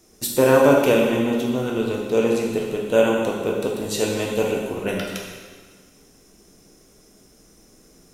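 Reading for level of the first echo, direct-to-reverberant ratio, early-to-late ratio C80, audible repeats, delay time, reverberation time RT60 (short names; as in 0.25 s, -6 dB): none, -1.5 dB, 3.0 dB, none, none, 1.6 s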